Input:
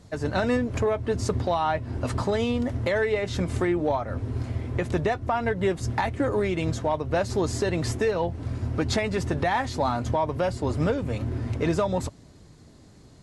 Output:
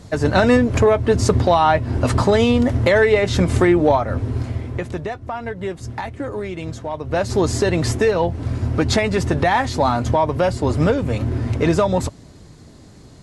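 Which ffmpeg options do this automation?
-af "volume=19.5dB,afade=t=out:st=3.88:d=1.11:silence=0.251189,afade=t=in:st=6.9:d=0.5:silence=0.334965"

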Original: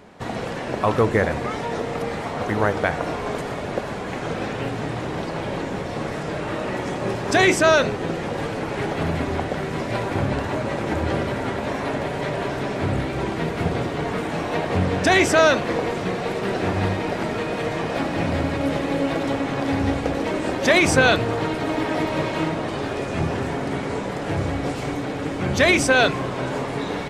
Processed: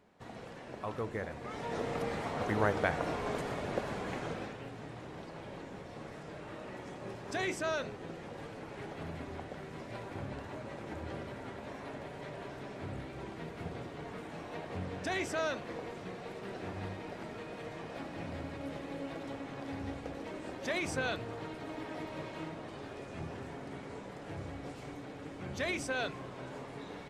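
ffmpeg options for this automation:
-af "volume=-9dB,afade=t=in:st=1.39:d=0.46:silence=0.316228,afade=t=out:st=4.09:d=0.5:silence=0.334965"

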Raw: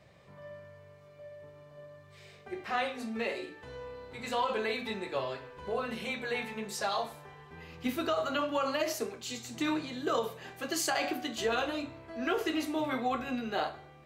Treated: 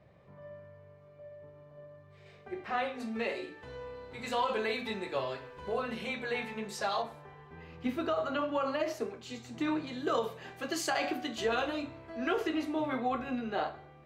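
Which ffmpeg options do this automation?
-af "asetnsamples=n=441:p=0,asendcmd='2.26 lowpass f 2200;3 lowpass f 5600;4.18 lowpass f 11000;5.82 lowpass f 4900;7.02 lowpass f 1800;9.87 lowpass f 4700;12.47 lowpass f 2100',lowpass=f=1.1k:p=1"

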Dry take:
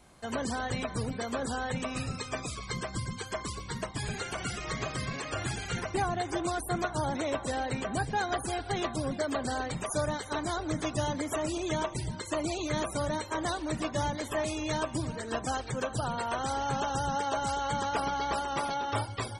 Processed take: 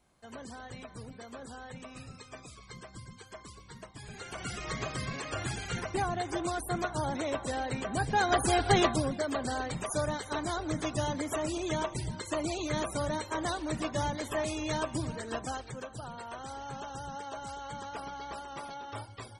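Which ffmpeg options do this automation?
-af "volume=8.5dB,afade=t=in:st=4.07:d=0.55:silence=0.298538,afade=t=in:st=7.92:d=0.81:silence=0.316228,afade=t=out:st=8.73:d=0.39:silence=0.334965,afade=t=out:st=15.13:d=0.74:silence=0.354813"

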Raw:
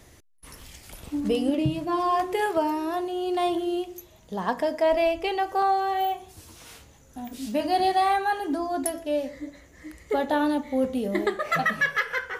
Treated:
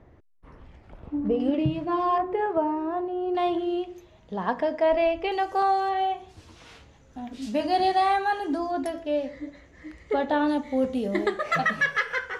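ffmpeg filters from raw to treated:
-af "asetnsamples=n=441:p=0,asendcmd='1.4 lowpass f 2900;2.18 lowpass f 1300;3.35 lowpass f 3200;5.32 lowpass f 8200;5.89 lowpass f 4100;7.42 lowpass f 6900;8.71 lowpass f 4100;10.48 lowpass f 7400',lowpass=1.2k"

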